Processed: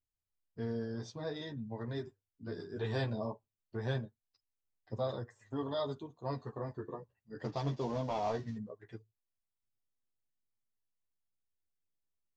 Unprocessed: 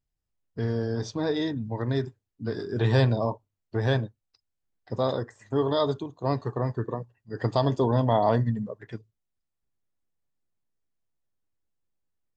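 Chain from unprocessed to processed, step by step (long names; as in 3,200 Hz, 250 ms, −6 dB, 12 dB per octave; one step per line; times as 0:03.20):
0:07.44–0:08.57: variable-slope delta modulation 32 kbit/s
multi-voice chorus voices 2, 0.2 Hz, delay 11 ms, depth 3 ms
level −8 dB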